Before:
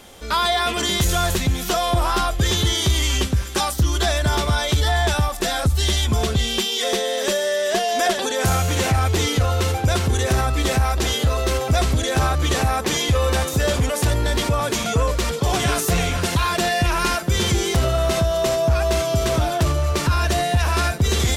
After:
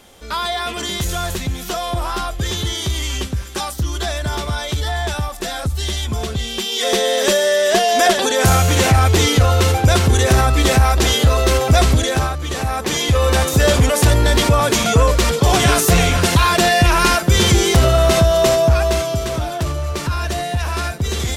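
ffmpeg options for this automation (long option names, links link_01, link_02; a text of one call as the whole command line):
ffmpeg -i in.wav -af "volume=18dB,afade=type=in:start_time=6.56:duration=0.49:silence=0.375837,afade=type=out:start_time=11.91:duration=0.49:silence=0.266073,afade=type=in:start_time=12.4:duration=1.26:silence=0.251189,afade=type=out:start_time=18.47:duration=0.78:silence=0.375837" out.wav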